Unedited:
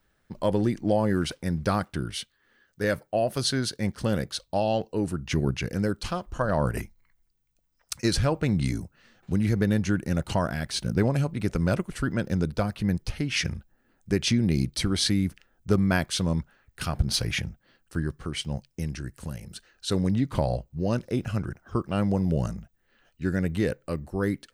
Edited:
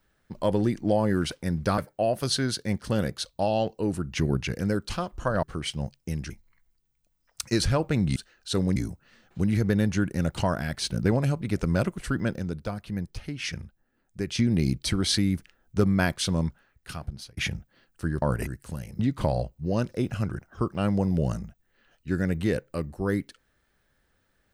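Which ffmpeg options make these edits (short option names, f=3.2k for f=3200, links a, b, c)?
-filter_complex "[0:a]asplit=12[a][b][c][d][e][f][g][h][i][j][k][l];[a]atrim=end=1.782[m];[b]atrim=start=2.918:end=6.572[n];[c]atrim=start=18.138:end=19.012[o];[d]atrim=start=6.818:end=8.682[p];[e]atrim=start=19.528:end=20.132[q];[f]atrim=start=8.678:end=12.312[r];[g]atrim=start=12.308:end=14.312,asetpts=PTS-STARTPTS,volume=-6dB[s];[h]atrim=start=14.308:end=17.29,asetpts=PTS-STARTPTS,afade=t=out:st=2.052:d=0.93[t];[i]atrim=start=17.29:end=18.142,asetpts=PTS-STARTPTS,afade=t=in:d=0.004:c=hsin[u];[j]atrim=start=6.568:end=6.822[v];[k]atrim=start=19.008:end=19.532[w];[l]atrim=start=20.128[x];[m][n]acrossfade=d=0.004:c1=hsin:c2=hsin[y];[y][o]acrossfade=d=0.004:c1=hsin:c2=hsin[z];[z][p]acrossfade=d=0.004:c1=hsin:c2=hsin[aa];[aa][q]acrossfade=d=0.004:c1=hsin:c2=hsin[ab];[ab][r]acrossfade=d=0.004:c1=hsin:c2=hsin[ac];[ac][s]acrossfade=d=0.004:c1=hsin:c2=hsin[ad];[t][u]concat=n=2:v=0:a=1[ae];[ad][ae]acrossfade=d=0.004:c1=hsin:c2=hsin[af];[af][v]acrossfade=d=0.004:c1=hsin:c2=hsin[ag];[ag][w]acrossfade=d=0.004:c1=hsin:c2=hsin[ah];[ah][x]acrossfade=d=0.004:c1=hsin:c2=hsin"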